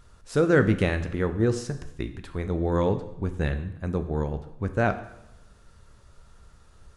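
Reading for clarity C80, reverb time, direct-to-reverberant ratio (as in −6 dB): 14.5 dB, 0.85 s, 8.5 dB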